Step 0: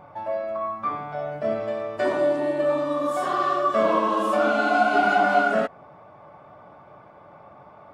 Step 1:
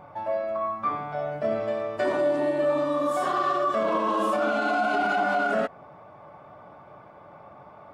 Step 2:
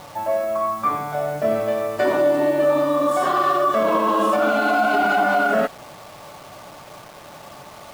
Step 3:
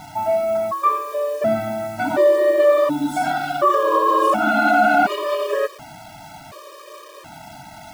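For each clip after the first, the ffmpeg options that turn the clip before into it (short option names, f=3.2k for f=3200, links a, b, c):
-af "alimiter=limit=-16.5dB:level=0:latency=1:release=33"
-af "acrusher=bits=7:mix=0:aa=0.000001,volume=6dB"
-af "afftfilt=real='re*gt(sin(2*PI*0.69*pts/sr)*(1-2*mod(floor(b*sr/1024/320),2)),0)':imag='im*gt(sin(2*PI*0.69*pts/sr)*(1-2*mod(floor(b*sr/1024/320),2)),0)':win_size=1024:overlap=0.75,volume=4dB"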